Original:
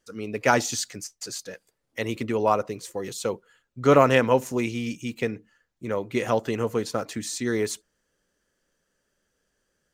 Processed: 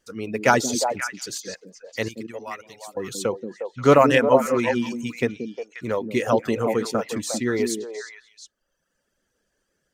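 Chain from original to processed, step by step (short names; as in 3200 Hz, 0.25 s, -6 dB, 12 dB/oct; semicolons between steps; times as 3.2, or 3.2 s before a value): reverb removal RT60 1.3 s; 2.08–2.97 passive tone stack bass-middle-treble 5-5-5; delay with a stepping band-pass 0.178 s, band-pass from 250 Hz, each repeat 1.4 oct, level -1 dB; gain +3 dB; AAC 128 kbps 48000 Hz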